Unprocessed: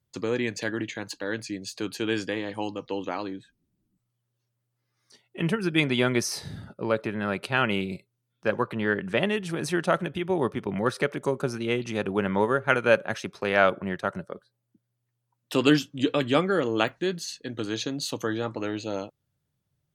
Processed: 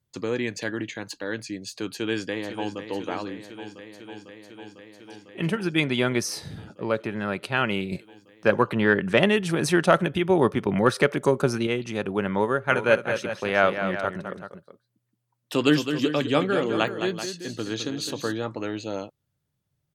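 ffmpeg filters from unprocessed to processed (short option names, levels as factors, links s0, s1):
-filter_complex "[0:a]asplit=2[s0][s1];[s1]afade=t=in:st=1.91:d=0.01,afade=t=out:st=2.8:d=0.01,aecho=0:1:500|1000|1500|2000|2500|3000|3500|4000|4500|5000|5500|6000:0.316228|0.252982|0.202386|0.161909|0.129527|0.103622|0.0828972|0.0663178|0.0530542|0.0424434|0.0339547|0.0271638[s2];[s0][s2]amix=inputs=2:normalize=0,asettb=1/sr,asplit=3[s3][s4][s5];[s3]atrim=end=3.304[s6];[s4]atrim=start=3.3:end=5.65,asetpts=PTS-STARTPTS,afade=t=in:d=0.004:c=qsin,afade=t=out:st=2.346:d=0.004:c=qsin,asplit=2[s7][s8];[s8]adelay=43,volume=0.2[s9];[s7][s9]amix=inputs=2:normalize=0,atrim=end_sample=103635[s10];[s5]atrim=start=5.646[s11];[s6][s10]acrossfade=d=0.004:c1=hsin:c2=qsin[s12];[s12][s11]acrossfade=d=0.004:c1=qsin:c2=hsin,asettb=1/sr,asplit=3[s13][s14][s15];[s13]atrim=end=7.924[s16];[s14]atrim=start=7.92:end=11.67,asetpts=PTS-STARTPTS,afade=t=in:d=0.004:c=qsin,afade=t=out:st=3.746:d=0.004:c=qsin,acontrast=47[s17];[s15]atrim=start=11.666[s18];[s16][s17]acrossfade=d=0.004:c1=hsin:c2=qsin[s19];[s19][s18]acrossfade=d=0.004:c1=qsin:c2=hsin,asplit=3[s20][s21][s22];[s20]afade=t=out:st=12.69:d=0.02[s23];[s21]aecho=1:1:211|383:0.376|0.251,afade=t=in:st=12.69:d=0.02,afade=t=out:st=18.32:d=0.02[s24];[s22]afade=t=in:st=18.32:d=0.02[s25];[s23][s24][s25]amix=inputs=3:normalize=0"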